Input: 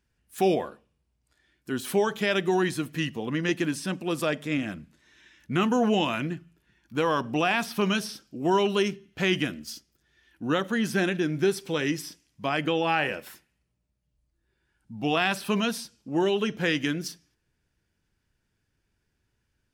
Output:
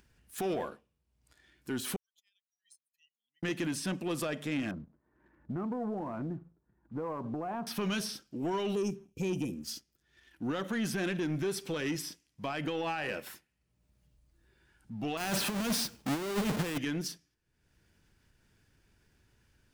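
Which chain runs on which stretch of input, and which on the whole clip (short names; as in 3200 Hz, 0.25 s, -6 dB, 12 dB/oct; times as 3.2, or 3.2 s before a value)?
1.96–3.43 spectral contrast raised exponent 2.4 + inverse Chebyshev high-pass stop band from 990 Hz, stop band 80 dB + compressor 16:1, threshold -56 dBFS
4.71–7.67 LPF 1100 Hz 24 dB/oct + compressor 8:1, threshold -30 dBFS
8.75–9.64 brick-wall FIR band-stop 560–2300 Hz + band shelf 3500 Hz -16 dB 1 oct
15.17–16.78 half-waves squared off + negative-ratio compressor -26 dBFS, ratio -0.5
whole clip: limiter -21 dBFS; sample leveller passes 1; upward compressor, threshold -49 dBFS; gain -5 dB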